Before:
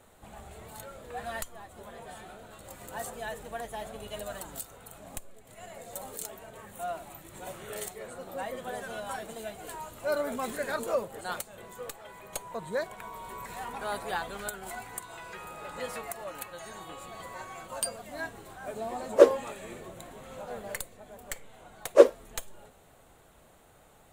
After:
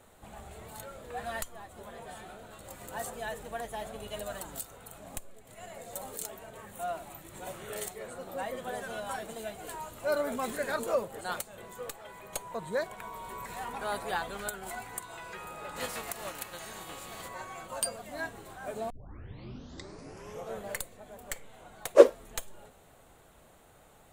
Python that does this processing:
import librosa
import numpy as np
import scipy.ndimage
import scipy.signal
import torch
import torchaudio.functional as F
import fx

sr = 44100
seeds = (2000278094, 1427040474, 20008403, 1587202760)

y = fx.spec_flatten(x, sr, power=0.63, at=(15.75, 17.27), fade=0.02)
y = fx.edit(y, sr, fx.tape_start(start_s=18.9, length_s=1.75), tone=tone)